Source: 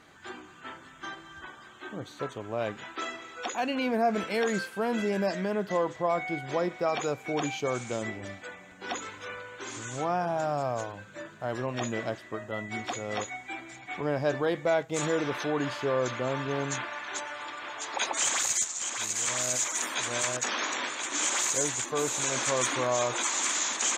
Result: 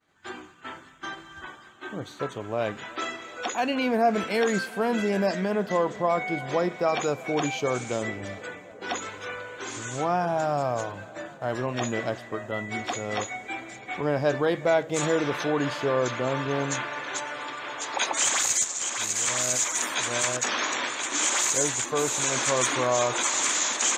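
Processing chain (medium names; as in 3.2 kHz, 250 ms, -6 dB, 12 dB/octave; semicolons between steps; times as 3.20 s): expander -45 dBFS; tape echo 371 ms, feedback 89%, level -20 dB, low-pass 1.8 kHz; reverberation, pre-delay 3 ms, DRR 19.5 dB; trim +3.5 dB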